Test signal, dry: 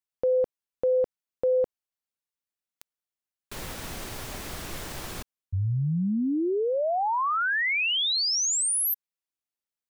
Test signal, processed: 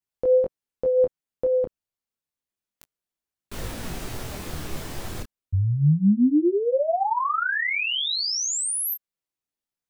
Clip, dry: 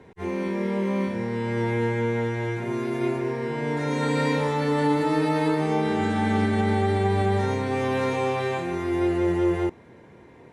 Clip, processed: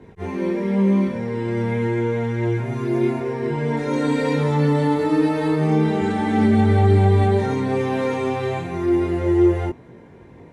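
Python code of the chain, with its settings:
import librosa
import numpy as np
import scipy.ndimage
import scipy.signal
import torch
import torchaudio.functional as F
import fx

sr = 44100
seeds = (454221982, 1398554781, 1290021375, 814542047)

y = fx.low_shelf(x, sr, hz=480.0, db=7.0)
y = fx.detune_double(y, sr, cents=10)
y = y * librosa.db_to_amplitude(3.5)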